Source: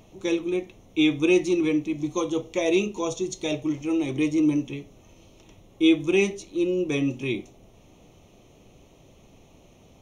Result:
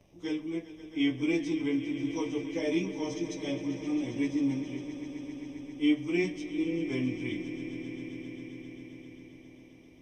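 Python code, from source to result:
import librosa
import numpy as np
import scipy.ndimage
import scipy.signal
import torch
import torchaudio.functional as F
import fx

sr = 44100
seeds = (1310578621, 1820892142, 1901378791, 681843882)

y = fx.pitch_bins(x, sr, semitones=-1.5)
y = fx.echo_swell(y, sr, ms=133, loudest=5, wet_db=-15.5)
y = y * librosa.db_to_amplitude(-6.5)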